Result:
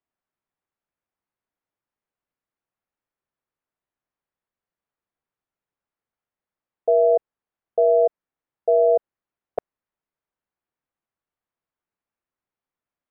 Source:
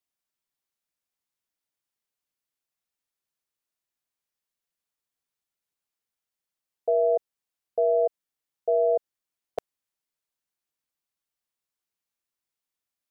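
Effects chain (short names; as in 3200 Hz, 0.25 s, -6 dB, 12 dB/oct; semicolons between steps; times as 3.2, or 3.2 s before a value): LPF 1600 Hz 12 dB/oct; gain +5.5 dB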